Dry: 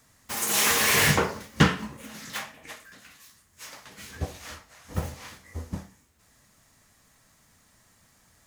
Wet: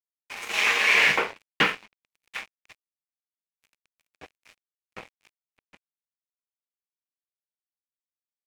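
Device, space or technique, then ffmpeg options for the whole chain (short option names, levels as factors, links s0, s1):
pocket radio on a weak battery: -af "highpass=390,lowpass=4100,aeval=exprs='sgn(val(0))*max(abs(val(0))-0.0133,0)':c=same,equalizer=f=2400:t=o:w=0.55:g=11"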